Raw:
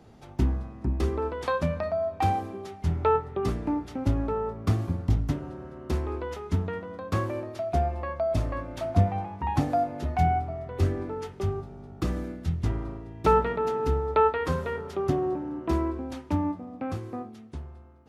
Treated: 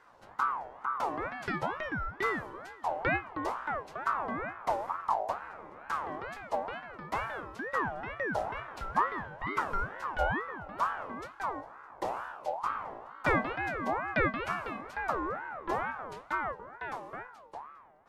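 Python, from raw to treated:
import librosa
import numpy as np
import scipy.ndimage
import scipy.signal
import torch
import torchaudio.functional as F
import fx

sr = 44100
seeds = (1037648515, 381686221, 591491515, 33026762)

y = np.clip(x, -10.0 ** (-12.5 / 20.0), 10.0 ** (-12.5 / 20.0))
y = fx.ring_lfo(y, sr, carrier_hz=960.0, swing_pct=30, hz=2.2)
y = F.gain(torch.from_numpy(y), -4.0).numpy()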